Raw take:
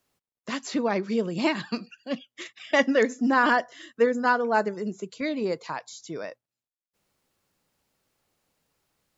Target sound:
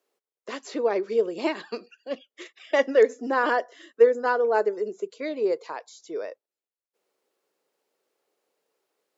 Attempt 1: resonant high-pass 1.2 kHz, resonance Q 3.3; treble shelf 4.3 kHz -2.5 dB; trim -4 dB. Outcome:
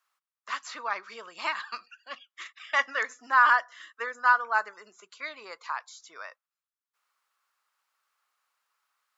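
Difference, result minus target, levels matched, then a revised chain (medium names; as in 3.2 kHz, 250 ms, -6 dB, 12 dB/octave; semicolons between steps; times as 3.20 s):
500 Hz band -18.5 dB
resonant high-pass 420 Hz, resonance Q 3.3; treble shelf 4.3 kHz -2.5 dB; trim -4 dB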